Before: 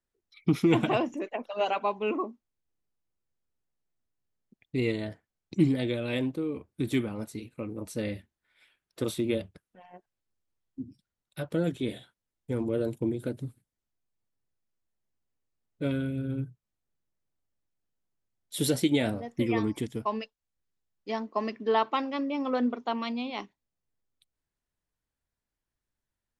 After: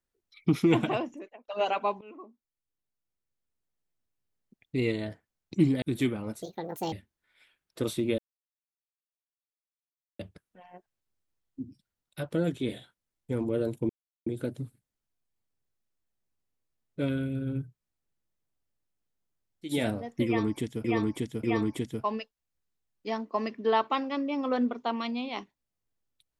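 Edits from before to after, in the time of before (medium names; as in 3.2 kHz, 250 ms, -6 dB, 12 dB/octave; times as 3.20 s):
0.71–1.48 s: fade out
2.01–4.77 s: fade in equal-power, from -23.5 dB
5.82–6.74 s: delete
7.34–8.13 s: speed 157%
9.39 s: insert silence 2.01 s
13.09 s: insert silence 0.37 s
18.56–18.93 s: delete, crossfade 0.24 s
19.45–20.04 s: loop, 3 plays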